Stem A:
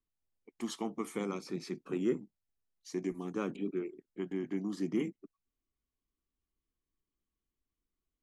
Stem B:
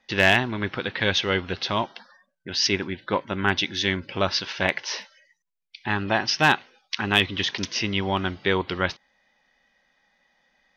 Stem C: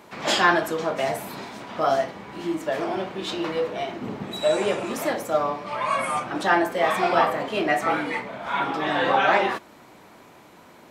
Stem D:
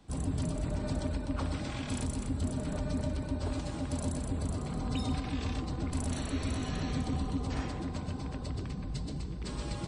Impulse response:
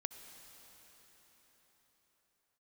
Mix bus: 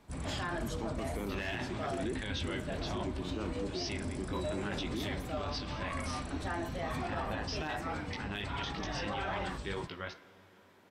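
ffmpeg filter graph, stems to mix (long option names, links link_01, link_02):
-filter_complex "[0:a]volume=-3dB[link_01];[1:a]bandreject=frequency=73.18:width_type=h:width=4,bandreject=frequency=146.36:width_type=h:width=4,bandreject=frequency=219.54:width_type=h:width=4,bandreject=frequency=292.72:width_type=h:width=4,bandreject=frequency=365.9:width_type=h:width=4,bandreject=frequency=439.08:width_type=h:width=4,bandreject=frequency=512.26:width_type=h:width=4,bandreject=frequency=585.44:width_type=h:width=4,bandreject=frequency=658.62:width_type=h:width=4,bandreject=frequency=731.8:width_type=h:width=4,bandreject=frequency=804.98:width_type=h:width=4,bandreject=frequency=878.16:width_type=h:width=4,bandreject=frequency=951.34:width_type=h:width=4,bandreject=frequency=1024.52:width_type=h:width=4,bandreject=frequency=1097.7:width_type=h:width=4,bandreject=frequency=1170.88:width_type=h:width=4,bandreject=frequency=1244.06:width_type=h:width=4,bandreject=frequency=1317.24:width_type=h:width=4,bandreject=frequency=1390.42:width_type=h:width=4,bandreject=frequency=1463.6:width_type=h:width=4,bandreject=frequency=1536.78:width_type=h:width=4,bandreject=frequency=1609.96:width_type=h:width=4,bandreject=frequency=1683.14:width_type=h:width=4,bandreject=frequency=1756.32:width_type=h:width=4,bandreject=frequency=1829.5:width_type=h:width=4,bandreject=frequency=1902.68:width_type=h:width=4,bandreject=frequency=1975.86:width_type=h:width=4,bandreject=frequency=2049.04:width_type=h:width=4,bandreject=frequency=2122.22:width_type=h:width=4,bandreject=frequency=2195.4:width_type=h:width=4,bandreject=frequency=2268.58:width_type=h:width=4,bandreject=frequency=2341.76:width_type=h:width=4,bandreject=frequency=2414.94:width_type=h:width=4,bandreject=frequency=2488.12:width_type=h:width=4,flanger=delay=17.5:depth=2.4:speed=3,adelay=1200,volume=-14dB,asplit=2[link_02][link_03];[link_03]volume=-6.5dB[link_04];[2:a]volume=-15.5dB[link_05];[3:a]acrossover=split=490[link_06][link_07];[link_07]acompressor=threshold=-42dB:ratio=6[link_08];[link_06][link_08]amix=inputs=2:normalize=0,volume=-5.5dB[link_09];[4:a]atrim=start_sample=2205[link_10];[link_04][link_10]afir=irnorm=-1:irlink=0[link_11];[link_01][link_02][link_05][link_09][link_11]amix=inputs=5:normalize=0,alimiter=level_in=3.5dB:limit=-24dB:level=0:latency=1:release=20,volume=-3.5dB"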